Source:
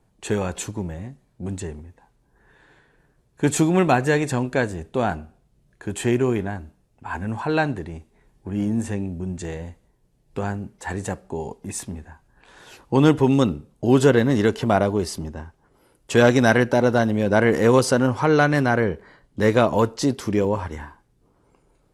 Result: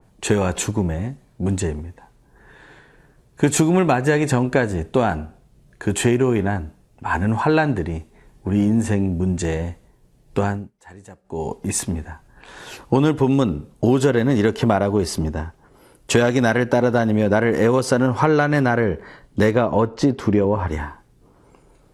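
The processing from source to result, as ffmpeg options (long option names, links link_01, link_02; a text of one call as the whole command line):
ffmpeg -i in.wav -filter_complex "[0:a]asettb=1/sr,asplit=3[link_01][link_02][link_03];[link_01]atrim=end=19.514[link_04];[link_02]atrim=start=19.51:end=20.68,asetpts=PTS-STARTPTS,afade=type=in:duration=0.004:curve=qsin,afade=type=out:start_time=1.166:duration=0.004:curve=qsin,lowpass=frequency=2000:poles=1[link_05];[link_03]atrim=start=20.676[link_06];[link_04][link_05]acrossfade=duration=0.004:curve1=hsin:curve2=qsin[link_07];[link_07][link_06]acrossfade=duration=0.004:curve1=qsin:curve2=hsin,asplit=3[link_08][link_09][link_10];[link_08]atrim=end=10.71,asetpts=PTS-STARTPTS,afade=type=out:start_time=10.4:duration=0.31:silence=0.0749894[link_11];[link_09]atrim=start=10.71:end=11.24,asetpts=PTS-STARTPTS,volume=-22.5dB[link_12];[link_10]atrim=start=11.24,asetpts=PTS-STARTPTS,afade=type=in:duration=0.31:silence=0.0749894[link_13];[link_11][link_12][link_13]concat=n=3:v=0:a=1,acompressor=threshold=-21dB:ratio=10,adynamicequalizer=threshold=0.00501:dfrequency=2600:dqfactor=0.7:tfrequency=2600:tqfactor=0.7:attack=5:release=100:ratio=0.375:range=2:mode=cutabove:tftype=highshelf,volume=8.5dB" out.wav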